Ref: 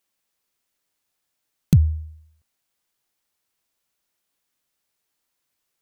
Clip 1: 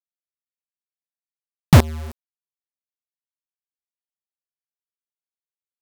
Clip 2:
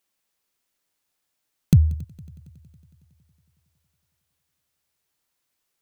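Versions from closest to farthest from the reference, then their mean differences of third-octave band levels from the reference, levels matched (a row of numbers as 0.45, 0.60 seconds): 2, 1; 3.0, 13.5 decibels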